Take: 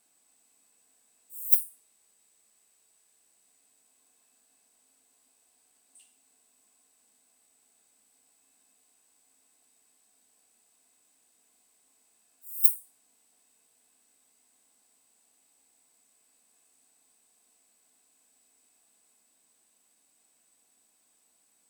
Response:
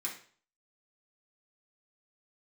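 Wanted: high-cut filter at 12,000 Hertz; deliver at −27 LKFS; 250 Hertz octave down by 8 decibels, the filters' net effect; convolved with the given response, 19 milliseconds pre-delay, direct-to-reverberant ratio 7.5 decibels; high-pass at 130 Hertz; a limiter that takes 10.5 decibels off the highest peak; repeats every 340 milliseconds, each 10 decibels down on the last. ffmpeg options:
-filter_complex "[0:a]highpass=130,lowpass=12000,equalizer=frequency=250:width_type=o:gain=-9,alimiter=level_in=2dB:limit=-24dB:level=0:latency=1,volume=-2dB,aecho=1:1:340|680|1020|1360:0.316|0.101|0.0324|0.0104,asplit=2[link_01][link_02];[1:a]atrim=start_sample=2205,adelay=19[link_03];[link_02][link_03]afir=irnorm=-1:irlink=0,volume=-9dB[link_04];[link_01][link_04]amix=inputs=2:normalize=0,volume=17dB"

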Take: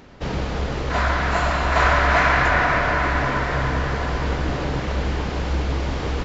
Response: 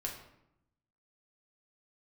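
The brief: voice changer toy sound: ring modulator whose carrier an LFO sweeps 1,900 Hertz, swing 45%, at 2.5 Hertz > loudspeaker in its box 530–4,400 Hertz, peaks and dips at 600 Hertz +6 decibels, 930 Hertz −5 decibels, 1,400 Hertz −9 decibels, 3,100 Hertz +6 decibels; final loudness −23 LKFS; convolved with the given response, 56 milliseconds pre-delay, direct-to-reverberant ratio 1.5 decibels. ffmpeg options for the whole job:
-filter_complex "[0:a]asplit=2[link_01][link_02];[1:a]atrim=start_sample=2205,adelay=56[link_03];[link_02][link_03]afir=irnorm=-1:irlink=0,volume=-2dB[link_04];[link_01][link_04]amix=inputs=2:normalize=0,aeval=exprs='val(0)*sin(2*PI*1900*n/s+1900*0.45/2.5*sin(2*PI*2.5*n/s))':channel_layout=same,highpass=530,equalizer=frequency=600:width_type=q:width=4:gain=6,equalizer=frequency=930:width_type=q:width=4:gain=-5,equalizer=frequency=1400:width_type=q:width=4:gain=-9,equalizer=frequency=3100:width_type=q:width=4:gain=6,lowpass=frequency=4400:width=0.5412,lowpass=frequency=4400:width=1.3066,volume=-4dB"

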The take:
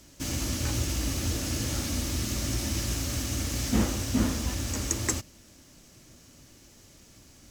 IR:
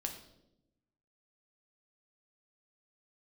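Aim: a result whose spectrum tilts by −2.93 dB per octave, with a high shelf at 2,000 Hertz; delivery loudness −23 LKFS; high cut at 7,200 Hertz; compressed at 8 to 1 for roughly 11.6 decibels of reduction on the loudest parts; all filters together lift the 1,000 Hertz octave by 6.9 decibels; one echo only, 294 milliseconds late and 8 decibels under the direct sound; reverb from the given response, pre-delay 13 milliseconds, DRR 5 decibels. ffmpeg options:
-filter_complex "[0:a]lowpass=7200,equalizer=frequency=1000:width_type=o:gain=7,highshelf=frequency=2000:gain=6.5,acompressor=threshold=-31dB:ratio=8,aecho=1:1:294:0.398,asplit=2[link_01][link_02];[1:a]atrim=start_sample=2205,adelay=13[link_03];[link_02][link_03]afir=irnorm=-1:irlink=0,volume=-5dB[link_04];[link_01][link_04]amix=inputs=2:normalize=0,volume=9.5dB"

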